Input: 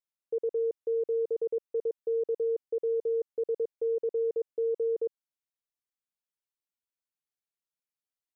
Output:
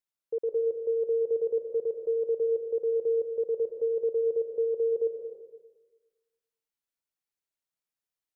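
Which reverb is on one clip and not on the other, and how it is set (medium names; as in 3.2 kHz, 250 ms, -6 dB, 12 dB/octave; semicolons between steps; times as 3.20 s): algorithmic reverb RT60 1.3 s, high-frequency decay 0.55×, pre-delay 110 ms, DRR 5.5 dB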